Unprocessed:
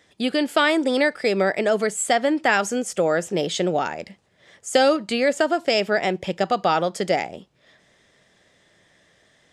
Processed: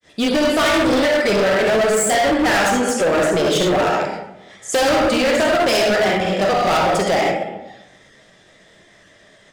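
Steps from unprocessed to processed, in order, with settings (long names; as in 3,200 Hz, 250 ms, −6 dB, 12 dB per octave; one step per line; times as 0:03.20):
comb and all-pass reverb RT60 0.93 s, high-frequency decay 0.55×, pre-delay 15 ms, DRR −0.5 dB
granular cloud 164 ms, grains 15 per second, spray 29 ms, pitch spread up and down by 0 semitones
hard clipping −22.5 dBFS, distortion −7 dB
level +8.5 dB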